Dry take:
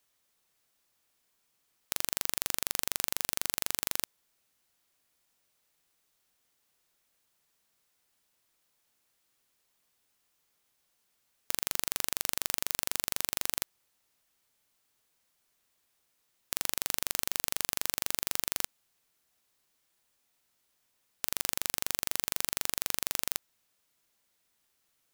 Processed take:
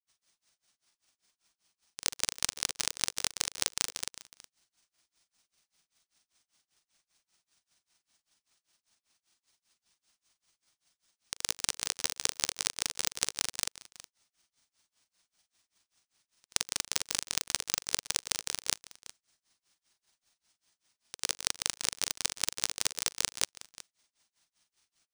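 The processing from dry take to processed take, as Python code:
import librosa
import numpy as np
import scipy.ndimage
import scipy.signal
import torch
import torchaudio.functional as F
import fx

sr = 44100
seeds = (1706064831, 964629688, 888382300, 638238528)

p1 = fx.granulator(x, sr, seeds[0], grain_ms=100.0, per_s=20.0, spray_ms=100.0, spread_st=0)
p2 = fx.peak_eq(p1, sr, hz=6400.0, db=10.5, octaves=1.5)
p3 = fx.granulator(p2, sr, seeds[1], grain_ms=201.0, per_s=5.1, spray_ms=100.0, spread_st=0)
p4 = np.repeat(scipy.signal.resample_poly(p3, 1, 3), 3)[:len(p3)]
p5 = fx.peak_eq(p4, sr, hz=480.0, db=-9.0, octaves=0.3)
p6 = p5 + fx.echo_single(p5, sr, ms=367, db=-17.5, dry=0)
y = p6 * librosa.db_to_amplitude(4.0)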